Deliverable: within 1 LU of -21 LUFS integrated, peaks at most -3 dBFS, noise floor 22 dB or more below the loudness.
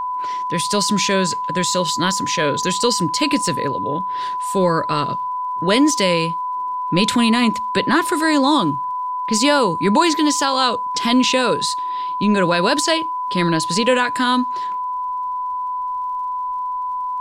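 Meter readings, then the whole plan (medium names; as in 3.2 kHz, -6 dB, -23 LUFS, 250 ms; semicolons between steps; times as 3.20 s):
tick rate 49 per s; steady tone 1 kHz; tone level -21 dBFS; loudness -18.5 LUFS; peak level -4.0 dBFS; loudness target -21.0 LUFS
-> de-click; band-stop 1 kHz, Q 30; trim -2.5 dB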